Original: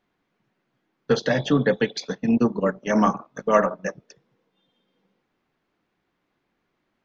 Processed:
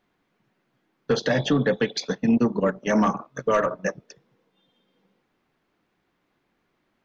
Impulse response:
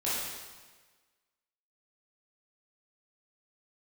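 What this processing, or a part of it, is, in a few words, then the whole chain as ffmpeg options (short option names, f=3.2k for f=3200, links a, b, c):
soft clipper into limiter: -filter_complex "[0:a]asettb=1/sr,asplit=3[a][b][c];[a]atrim=end=3.294[d];[b]atrim=start=3.29:end=3.76,asetpts=PTS-STARTPTS,afade=t=in:d=0.004:c=qsin,afade=t=out:st=0.466:d=0.004:c=qsin,equalizer=f=125:t=o:w=0.33:g=11,equalizer=f=200:t=o:w=0.33:g=-10,equalizer=f=800:t=o:w=0.33:g=-10[e];[c]atrim=start=3.756[f];[d][e]acrossfade=d=0.004:c1=hsin:c2=qsin[g];[g][f]acrossfade=d=0.004:c1=qsin:c2=hsin,asoftclip=type=tanh:threshold=-10dB,alimiter=limit=-15dB:level=0:latency=1:release=119,volume=2.5dB"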